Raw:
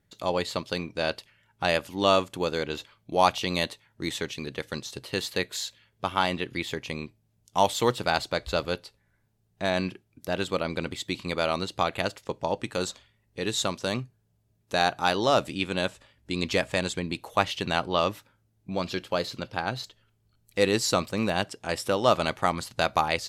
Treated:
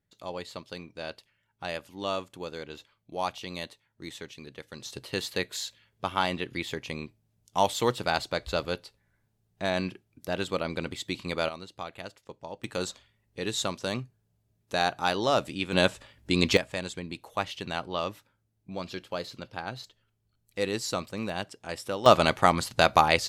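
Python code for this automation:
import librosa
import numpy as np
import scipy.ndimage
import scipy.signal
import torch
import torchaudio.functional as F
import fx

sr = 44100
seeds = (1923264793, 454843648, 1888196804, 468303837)

y = fx.gain(x, sr, db=fx.steps((0.0, -10.0), (4.8, -2.0), (11.49, -12.5), (12.64, -2.5), (15.73, 5.0), (16.57, -6.5), (22.06, 4.0)))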